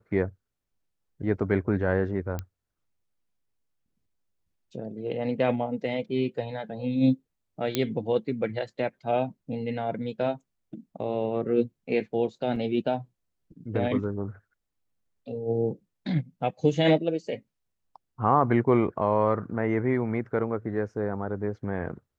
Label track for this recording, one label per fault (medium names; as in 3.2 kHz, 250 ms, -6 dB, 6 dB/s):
2.390000	2.390000	pop -19 dBFS
7.750000	7.750000	pop -9 dBFS
12.560000	12.560000	dropout 3.2 ms